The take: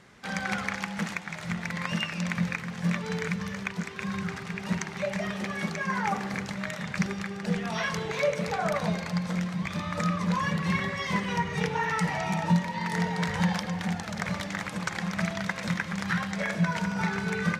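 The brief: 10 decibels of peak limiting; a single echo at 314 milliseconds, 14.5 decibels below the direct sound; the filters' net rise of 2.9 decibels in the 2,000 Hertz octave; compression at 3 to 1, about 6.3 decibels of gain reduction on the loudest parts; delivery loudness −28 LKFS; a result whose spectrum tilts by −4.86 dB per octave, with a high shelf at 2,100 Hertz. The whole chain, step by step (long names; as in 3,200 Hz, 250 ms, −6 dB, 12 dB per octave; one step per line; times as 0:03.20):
parametric band 2,000 Hz +8 dB
high-shelf EQ 2,100 Hz −8.5 dB
downward compressor 3 to 1, threshold −28 dBFS
brickwall limiter −24 dBFS
single-tap delay 314 ms −14.5 dB
level +5.5 dB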